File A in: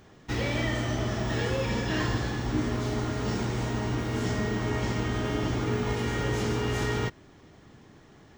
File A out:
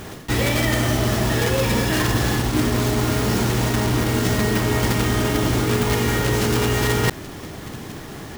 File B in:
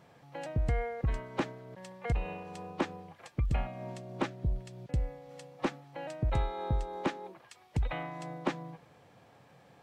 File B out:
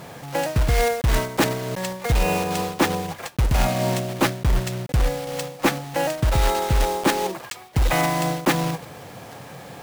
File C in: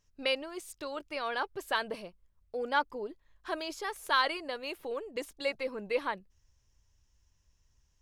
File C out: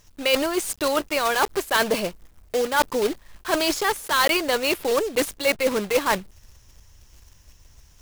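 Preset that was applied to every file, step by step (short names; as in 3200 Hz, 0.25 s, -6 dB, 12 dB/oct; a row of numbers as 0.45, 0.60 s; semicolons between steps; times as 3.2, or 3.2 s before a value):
block floating point 3-bit; reverse; compressor 6:1, threshold -36 dBFS; reverse; normalise peaks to -6 dBFS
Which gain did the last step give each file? +18.5, +19.5, +18.0 dB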